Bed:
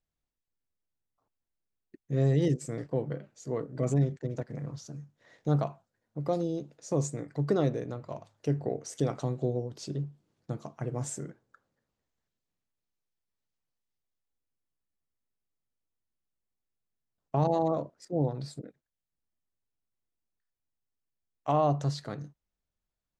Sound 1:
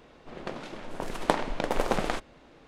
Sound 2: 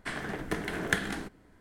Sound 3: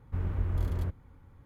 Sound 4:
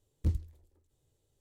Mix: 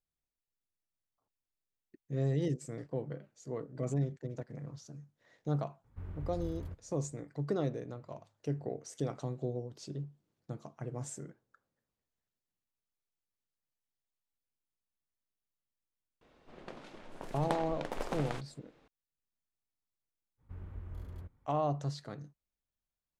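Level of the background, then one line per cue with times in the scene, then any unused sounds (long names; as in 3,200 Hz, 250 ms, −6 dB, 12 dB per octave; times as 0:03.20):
bed −6.5 dB
0:05.84: mix in 3 −12 dB
0:16.21: mix in 1 −11 dB
0:20.37: mix in 3 −14.5 dB, fades 0.05 s
not used: 2, 4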